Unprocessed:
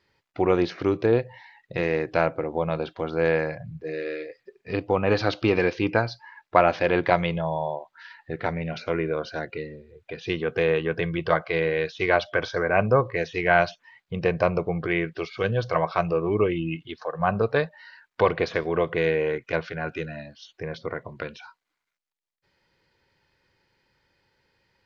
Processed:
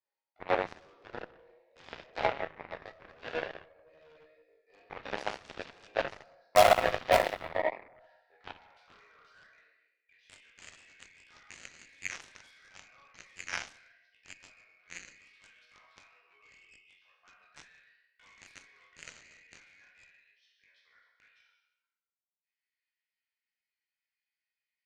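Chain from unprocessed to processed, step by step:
delay that plays each chunk backwards 190 ms, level −12 dB
high-pass filter sweep 640 Hz → 2,200 Hz, 0:07.84–0:10.28
in parallel at −8 dB: wrap-around overflow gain 3.5 dB
on the sum: resonators tuned to a chord C#2 sus4, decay 0.76 s
chorus effect 2.2 Hz, delay 17 ms, depth 3.8 ms
comb and all-pass reverb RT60 0.67 s, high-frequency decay 0.3×, pre-delay 90 ms, DRR 9.5 dB
harmonic generator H 3 −25 dB, 5 −12 dB, 7 −10 dB, 8 −36 dB, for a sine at −17 dBFS
level +8 dB

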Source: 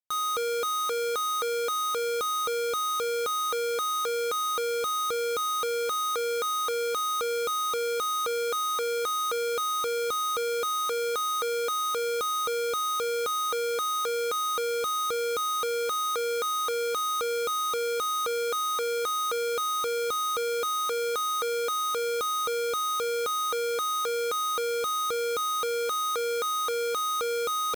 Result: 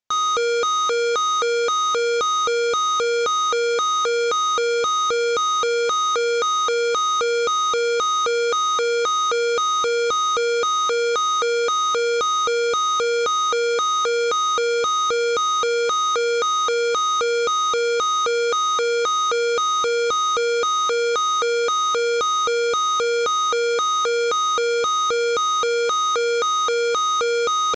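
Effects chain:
downsampling to 16,000 Hz
level +8.5 dB

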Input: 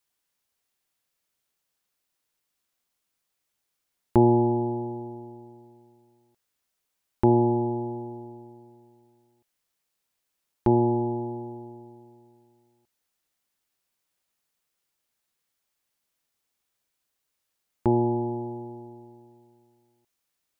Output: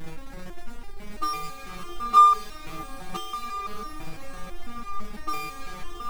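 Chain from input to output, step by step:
Butterworth low-pass 670 Hz
in parallel at −0.5 dB: upward compression, threshold −31 dBFS
on the sum: change of speed 3.38×
phases set to zero 109 Hz
background noise brown −44 dBFS
power curve on the samples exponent 0.5
on a send: feedback delay with all-pass diffusion 639 ms, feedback 65%, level −8 dB
on the sum: step-sequenced resonator 6 Hz 160–400 Hz
level +1.5 dB

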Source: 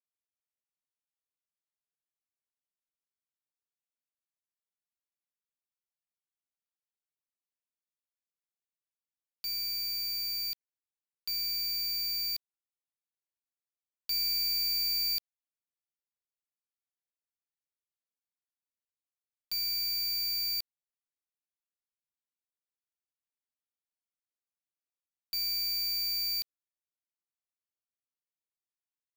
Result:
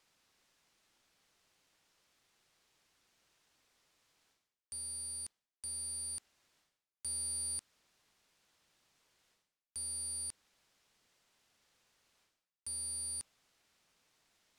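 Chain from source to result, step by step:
reversed playback
upward compression, threshold −44 dBFS
reversed playback
low-pass filter 3,200 Hz 12 dB per octave
wrong playback speed 7.5 ips tape played at 15 ips

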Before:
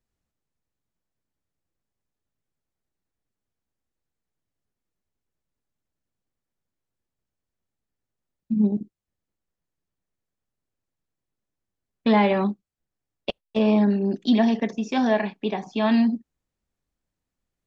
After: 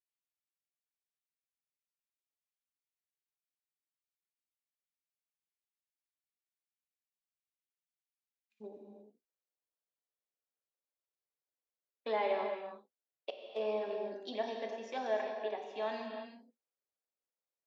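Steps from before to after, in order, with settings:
four-pole ladder high-pass 1,900 Hz, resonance 40%, from 0:08.60 400 Hz
reverb whose tail is shaped and stops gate 370 ms flat, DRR 3 dB
level −7.5 dB

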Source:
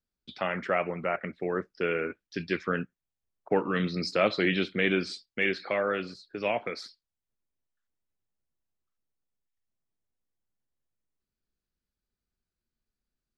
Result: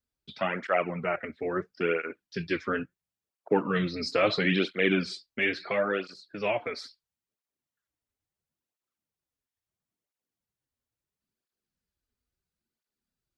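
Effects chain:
0:04.15–0:04.71: transient designer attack −1 dB, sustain +4 dB
through-zero flanger with one copy inverted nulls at 0.74 Hz, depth 6.3 ms
level +3.5 dB

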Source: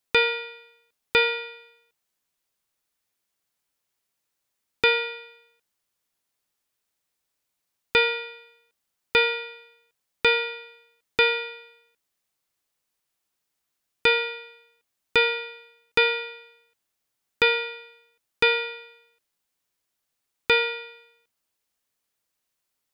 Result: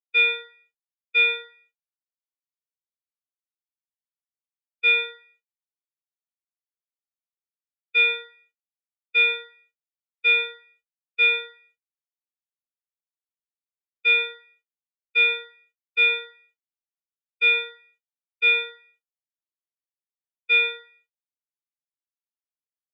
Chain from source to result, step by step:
band-pass filter 430–5,500 Hz
in parallel at −1 dB: downward compressor, threshold −29 dBFS, peak gain reduction 12.5 dB
on the sum: brickwall limiter −14.5 dBFS, peak gain reduction 10 dB
high-shelf EQ 2,200 Hz +9.5 dB
reverb whose tail is shaped and stops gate 450 ms falling, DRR 8.5 dB
bit-depth reduction 6 bits, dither none
every bin expanded away from the loudest bin 2.5 to 1

